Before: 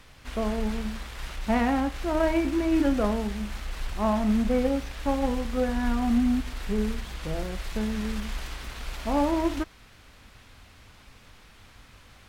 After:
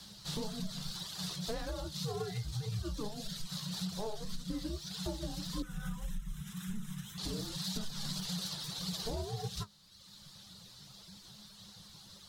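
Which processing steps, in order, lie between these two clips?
reverb reduction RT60 1.3 s
flanger 1.8 Hz, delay 6.1 ms, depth 9 ms, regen +31%
0:05.62–0:07.18: phaser with its sweep stopped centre 2,000 Hz, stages 4
frequency shifter −210 Hz
downward compressor 6 to 1, threshold −35 dBFS, peak gain reduction 12 dB
high shelf with overshoot 3,100 Hz +9.5 dB, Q 3

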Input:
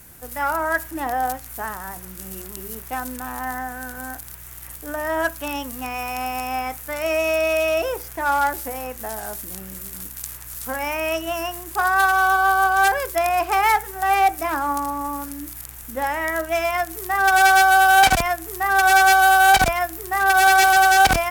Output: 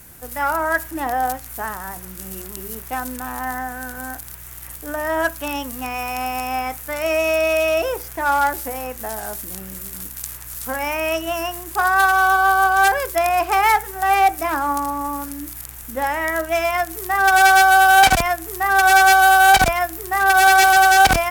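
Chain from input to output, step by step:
0:08.00–0:10.30: background noise violet −58 dBFS
level +2 dB

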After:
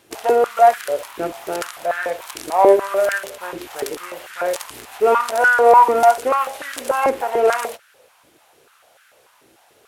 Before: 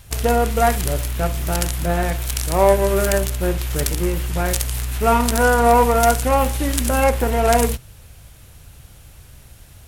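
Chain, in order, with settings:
high-shelf EQ 5,900 Hz −8 dB
high-pass on a step sequencer 6.8 Hz 330–1,500 Hz
level −3.5 dB

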